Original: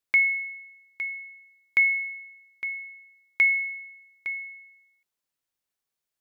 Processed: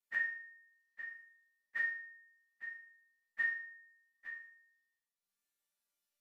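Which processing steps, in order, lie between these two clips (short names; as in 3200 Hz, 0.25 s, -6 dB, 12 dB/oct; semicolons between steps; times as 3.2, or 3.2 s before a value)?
inharmonic rescaling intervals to 92%; transient shaper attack -5 dB, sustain -9 dB; resonator bank G3 minor, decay 0.51 s; gain +18 dB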